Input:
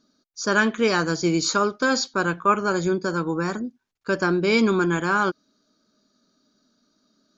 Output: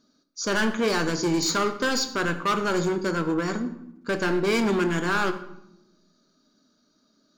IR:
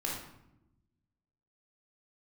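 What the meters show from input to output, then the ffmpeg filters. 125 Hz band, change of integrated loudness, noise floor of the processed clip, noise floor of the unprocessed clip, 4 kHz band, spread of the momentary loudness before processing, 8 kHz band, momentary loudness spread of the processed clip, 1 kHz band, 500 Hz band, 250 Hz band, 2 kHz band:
−2.5 dB, −2.5 dB, −67 dBFS, −74 dBFS, −0.5 dB, 9 LU, can't be measured, 9 LU, −3.5 dB, −2.5 dB, −2.5 dB, −3.5 dB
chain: -filter_complex "[0:a]volume=20.5dB,asoftclip=hard,volume=-20.5dB,asplit=2[link_01][link_02];[1:a]atrim=start_sample=2205,adelay=25[link_03];[link_02][link_03]afir=irnorm=-1:irlink=0,volume=-13dB[link_04];[link_01][link_04]amix=inputs=2:normalize=0"

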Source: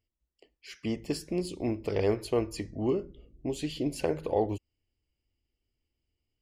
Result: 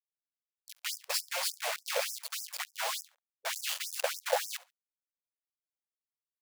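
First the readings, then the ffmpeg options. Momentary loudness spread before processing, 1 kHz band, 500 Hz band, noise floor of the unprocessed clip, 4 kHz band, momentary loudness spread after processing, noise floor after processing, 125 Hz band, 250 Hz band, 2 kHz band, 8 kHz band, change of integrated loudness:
10 LU, +1.0 dB, −8.5 dB, −85 dBFS, +8.5 dB, 8 LU, below −85 dBFS, below −40 dB, below −40 dB, +8.5 dB, +10.5 dB, −2.5 dB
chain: -filter_complex "[0:a]acrusher=bits=5:mix=0:aa=0.000001,lowshelf=frequency=200:gain=-9.5,asplit=2[link_01][link_02];[link_02]acompressor=threshold=-40dB:ratio=6,volume=1.5dB[link_03];[link_01][link_03]amix=inputs=2:normalize=0,asoftclip=type=tanh:threshold=-20.5dB,agate=range=-8dB:threshold=-34dB:ratio=16:detection=peak,asplit=2[link_04][link_05];[link_05]aecho=0:1:69|138:0.075|0.0165[link_06];[link_04][link_06]amix=inputs=2:normalize=0,afftfilt=real='re*gte(b*sr/1024,470*pow(5100/470,0.5+0.5*sin(2*PI*3.4*pts/sr)))':imag='im*gte(b*sr/1024,470*pow(5100/470,0.5+0.5*sin(2*PI*3.4*pts/sr)))':win_size=1024:overlap=0.75,volume=5dB"

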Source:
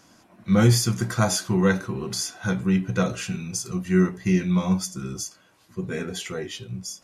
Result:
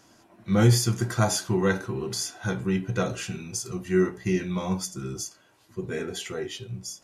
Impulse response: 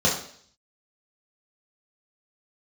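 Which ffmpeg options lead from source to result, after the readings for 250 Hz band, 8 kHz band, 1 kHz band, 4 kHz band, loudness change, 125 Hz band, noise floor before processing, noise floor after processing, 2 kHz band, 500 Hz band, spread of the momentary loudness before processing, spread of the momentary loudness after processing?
−4.5 dB, −2.0 dB, −1.5 dB, −2.0 dB, −3.0 dB, −2.5 dB, −58 dBFS, −59 dBFS, −2.5 dB, 0.0 dB, 14 LU, 13 LU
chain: -filter_complex "[0:a]asplit=2[link_01][link_02];[1:a]atrim=start_sample=2205,asetrate=83790,aresample=44100,lowpass=6600[link_03];[link_02][link_03]afir=irnorm=-1:irlink=0,volume=-22.5dB[link_04];[link_01][link_04]amix=inputs=2:normalize=0,volume=-2dB"

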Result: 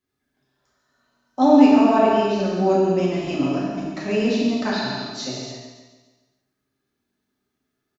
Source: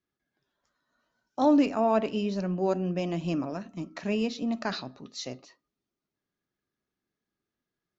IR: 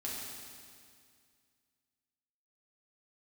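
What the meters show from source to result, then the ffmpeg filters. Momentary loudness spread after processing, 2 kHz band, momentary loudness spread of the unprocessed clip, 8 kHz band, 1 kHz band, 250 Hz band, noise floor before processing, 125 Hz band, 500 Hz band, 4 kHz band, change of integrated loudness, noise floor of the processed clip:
16 LU, +9.5 dB, 16 LU, can't be measured, +10.0 dB, +9.5 dB, below −85 dBFS, +5.5 dB, +9.5 dB, +9.0 dB, +9.0 dB, −78 dBFS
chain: -filter_complex "[0:a]aecho=1:1:141|282|423|564|705|846:0.335|0.167|0.0837|0.0419|0.0209|0.0105[link_01];[1:a]atrim=start_sample=2205,afade=type=out:start_time=0.4:duration=0.01,atrim=end_sample=18081[link_02];[link_01][link_02]afir=irnorm=-1:irlink=0,volume=7dB"

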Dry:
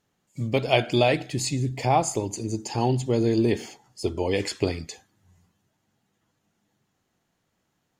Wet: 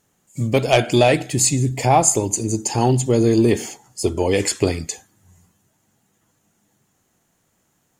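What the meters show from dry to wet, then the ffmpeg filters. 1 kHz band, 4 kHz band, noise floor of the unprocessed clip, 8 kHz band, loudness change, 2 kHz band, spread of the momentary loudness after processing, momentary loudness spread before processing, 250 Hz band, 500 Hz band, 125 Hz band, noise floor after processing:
+6.0 dB, +4.5 dB, −75 dBFS, +14.0 dB, +7.0 dB, +5.0 dB, 12 LU, 12 LU, +6.5 dB, +6.5 dB, +6.5 dB, −67 dBFS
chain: -af "aeval=exprs='0.596*sin(PI/2*1.41*val(0)/0.596)':channel_layout=same,highshelf=frequency=5900:width_type=q:width=1.5:gain=7"

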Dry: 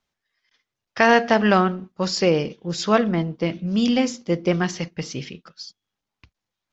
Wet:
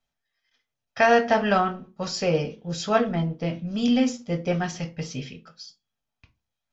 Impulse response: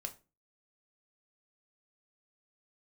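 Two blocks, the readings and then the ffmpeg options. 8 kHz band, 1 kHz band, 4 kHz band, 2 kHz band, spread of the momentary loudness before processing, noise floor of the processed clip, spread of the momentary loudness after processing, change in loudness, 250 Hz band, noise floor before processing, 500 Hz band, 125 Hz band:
can't be measured, −2.0 dB, −5.0 dB, −4.0 dB, 21 LU, −84 dBFS, 15 LU, −3.5 dB, −4.0 dB, −85 dBFS, −2.5 dB, −2.5 dB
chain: -filter_complex "[1:a]atrim=start_sample=2205,asetrate=52920,aresample=44100[link_01];[0:a][link_01]afir=irnorm=-1:irlink=0"

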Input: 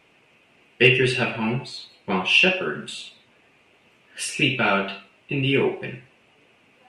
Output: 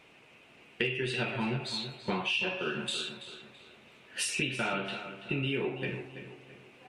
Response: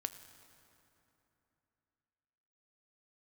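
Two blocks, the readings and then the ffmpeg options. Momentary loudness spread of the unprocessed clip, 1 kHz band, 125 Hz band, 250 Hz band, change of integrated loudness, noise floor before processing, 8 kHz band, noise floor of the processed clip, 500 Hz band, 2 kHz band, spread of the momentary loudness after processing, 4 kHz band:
19 LU, −10.0 dB, −9.5 dB, −10.0 dB, −12.0 dB, −59 dBFS, −4.0 dB, −58 dBFS, −11.5 dB, −12.0 dB, 16 LU, −9.5 dB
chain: -filter_complex "[0:a]equalizer=frequency=3800:width_type=o:width=0.21:gain=3.5,acompressor=threshold=-29dB:ratio=8,asplit=2[link_01][link_02];[link_02]adelay=332,lowpass=frequency=4200:poles=1,volume=-10.5dB,asplit=2[link_03][link_04];[link_04]adelay=332,lowpass=frequency=4200:poles=1,volume=0.39,asplit=2[link_05][link_06];[link_06]adelay=332,lowpass=frequency=4200:poles=1,volume=0.39,asplit=2[link_07][link_08];[link_08]adelay=332,lowpass=frequency=4200:poles=1,volume=0.39[link_09];[link_01][link_03][link_05][link_07][link_09]amix=inputs=5:normalize=0"

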